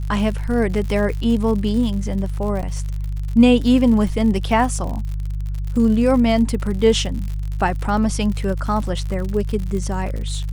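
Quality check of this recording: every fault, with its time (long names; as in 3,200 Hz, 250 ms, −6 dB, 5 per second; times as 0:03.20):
surface crackle 83 per second −27 dBFS
mains hum 50 Hz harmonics 3 −24 dBFS
0:02.62–0:02.63: drop-out 8.5 ms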